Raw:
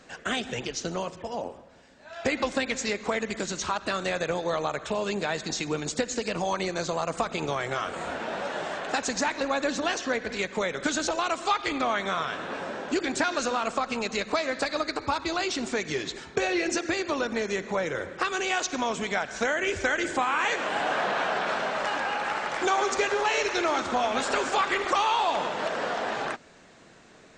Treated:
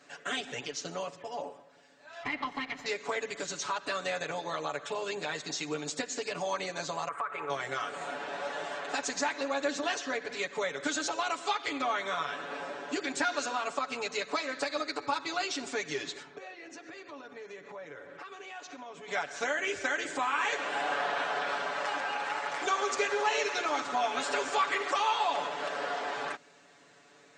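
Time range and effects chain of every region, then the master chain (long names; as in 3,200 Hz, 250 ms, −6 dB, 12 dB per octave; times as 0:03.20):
0:02.23–0:02.86: lower of the sound and its delayed copy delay 0.97 ms + low-pass filter 2,600 Hz
0:07.08–0:07.50: drawn EQ curve 100 Hz 0 dB, 200 Hz −17 dB, 440 Hz −1 dB, 760 Hz −4 dB, 1,200 Hz +11 dB, 2,100 Hz +2 dB, 3,700 Hz −16 dB, 5,500 Hz −27 dB, 11,000 Hz 0 dB + downward compressor 5 to 1, threshold −26 dBFS
0:16.22–0:19.08: low-pass filter 2,400 Hz 6 dB per octave + downward compressor 4 to 1, threshold −38 dBFS
whole clip: high-pass filter 360 Hz 6 dB per octave; comb filter 7 ms, depth 94%; level −6.5 dB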